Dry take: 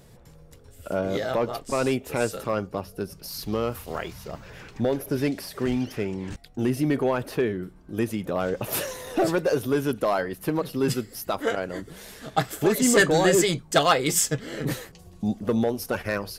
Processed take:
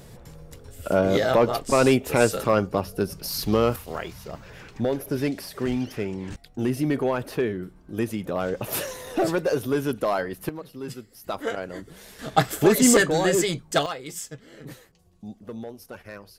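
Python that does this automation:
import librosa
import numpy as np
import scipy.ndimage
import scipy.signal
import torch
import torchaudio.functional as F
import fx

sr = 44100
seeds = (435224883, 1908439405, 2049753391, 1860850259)

y = fx.gain(x, sr, db=fx.steps((0.0, 6.0), (3.76, -0.5), (10.49, -11.0), (11.24, -3.0), (12.19, 4.0), (12.97, -2.0), (13.86, -13.0)))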